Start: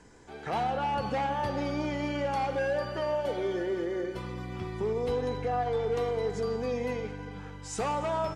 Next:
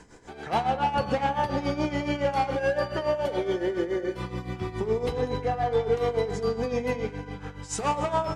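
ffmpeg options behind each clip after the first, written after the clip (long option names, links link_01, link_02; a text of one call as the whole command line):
ffmpeg -i in.wav -af "tremolo=f=7.1:d=0.76,bandreject=frequency=81.84:width_type=h:width=4,bandreject=frequency=163.68:width_type=h:width=4,bandreject=frequency=245.52:width_type=h:width=4,bandreject=frequency=327.36:width_type=h:width=4,bandreject=frequency=409.2:width_type=h:width=4,bandreject=frequency=491.04:width_type=h:width=4,bandreject=frequency=572.88:width_type=h:width=4,bandreject=frequency=654.72:width_type=h:width=4,bandreject=frequency=736.56:width_type=h:width=4,bandreject=frequency=818.4:width_type=h:width=4,bandreject=frequency=900.24:width_type=h:width=4,bandreject=frequency=982.08:width_type=h:width=4,bandreject=frequency=1063.92:width_type=h:width=4,bandreject=frequency=1145.76:width_type=h:width=4,bandreject=frequency=1227.6:width_type=h:width=4,bandreject=frequency=1309.44:width_type=h:width=4,bandreject=frequency=1391.28:width_type=h:width=4,bandreject=frequency=1473.12:width_type=h:width=4,bandreject=frequency=1554.96:width_type=h:width=4,bandreject=frequency=1636.8:width_type=h:width=4,bandreject=frequency=1718.64:width_type=h:width=4,bandreject=frequency=1800.48:width_type=h:width=4,bandreject=frequency=1882.32:width_type=h:width=4,bandreject=frequency=1964.16:width_type=h:width=4,bandreject=frequency=2046:width_type=h:width=4,bandreject=frequency=2127.84:width_type=h:width=4,bandreject=frequency=2209.68:width_type=h:width=4,bandreject=frequency=2291.52:width_type=h:width=4,bandreject=frequency=2373.36:width_type=h:width=4,bandreject=frequency=2455.2:width_type=h:width=4,bandreject=frequency=2537.04:width_type=h:width=4,bandreject=frequency=2618.88:width_type=h:width=4,volume=7.5dB" out.wav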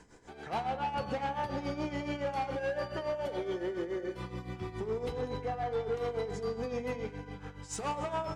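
ffmpeg -i in.wav -af "asoftclip=type=tanh:threshold=-20dB,volume=-6.5dB" out.wav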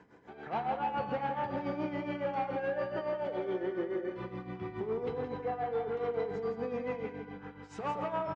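ffmpeg -i in.wav -af "highpass=120,lowpass=2400,aecho=1:1:167:0.398" out.wav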